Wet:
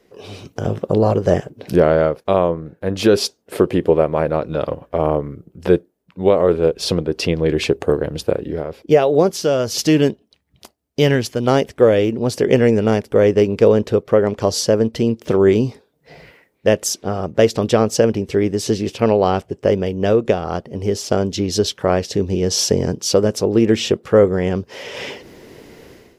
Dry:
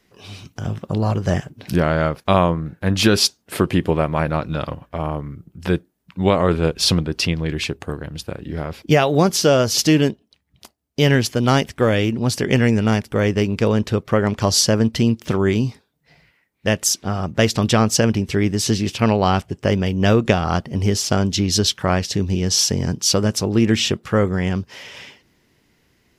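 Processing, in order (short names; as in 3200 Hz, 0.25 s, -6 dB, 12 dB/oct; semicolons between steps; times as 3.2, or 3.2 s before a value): bell 470 Hz +14 dB 1.3 oct, from 9.31 s +5.5 dB, from 11.47 s +12.5 dB; AGC gain up to 16 dB; gain -1 dB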